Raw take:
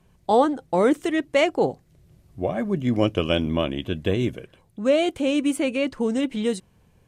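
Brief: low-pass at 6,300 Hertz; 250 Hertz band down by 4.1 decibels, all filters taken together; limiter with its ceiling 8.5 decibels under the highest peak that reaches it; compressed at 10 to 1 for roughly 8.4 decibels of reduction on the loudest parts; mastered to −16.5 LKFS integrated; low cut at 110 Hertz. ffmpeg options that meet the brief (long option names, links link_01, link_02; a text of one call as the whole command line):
ffmpeg -i in.wav -af "highpass=110,lowpass=6300,equalizer=frequency=250:width_type=o:gain=-5,acompressor=threshold=-23dB:ratio=10,volume=14.5dB,alimiter=limit=-5dB:level=0:latency=1" out.wav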